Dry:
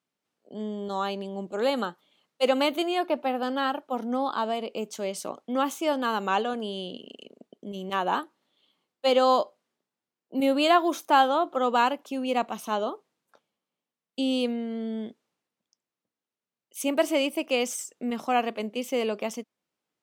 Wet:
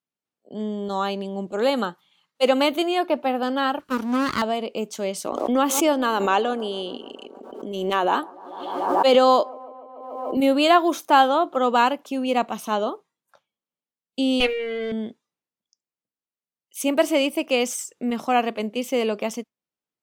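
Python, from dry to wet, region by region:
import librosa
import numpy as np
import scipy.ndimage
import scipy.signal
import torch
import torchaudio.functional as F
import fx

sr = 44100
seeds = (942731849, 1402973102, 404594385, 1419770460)

y = fx.chain(x, sr, fx.lower_of_two(delay_ms=0.67),
    fx.highpass(hz=120.0, slope=12),
    fx.high_shelf(hz=3000.0, db=6.5), at=(3.79, 4.42))
y = fx.chain(y, sr, fx.low_shelf_res(hz=210.0, db=-8.5, q=1.5),
    fx.echo_wet_bandpass(ms=146, feedback_pct=74, hz=530.0, wet_db=-21.0),
    fx.pre_swell(db_per_s=41.0), at=(5.26, 10.37))
y = fx.chain(y, sr, fx.lower_of_two(delay_ms=6.4),
    fx.peak_eq(hz=2200.0, db=14.5, octaves=0.91), at=(14.4, 14.92))
y = fx.noise_reduce_blind(y, sr, reduce_db=13)
y = fx.low_shelf(y, sr, hz=110.0, db=6.0)
y = y * 10.0 ** (4.0 / 20.0)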